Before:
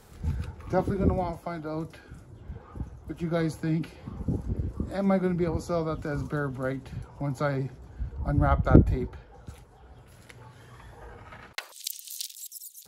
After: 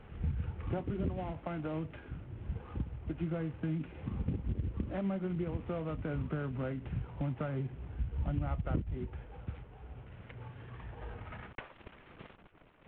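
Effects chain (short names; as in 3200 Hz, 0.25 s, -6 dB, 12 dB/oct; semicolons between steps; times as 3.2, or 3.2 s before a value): CVSD 16 kbps; compressor 6:1, threshold -34 dBFS, peak gain reduction 21.5 dB; low shelf 340 Hz +7 dB; gain -3 dB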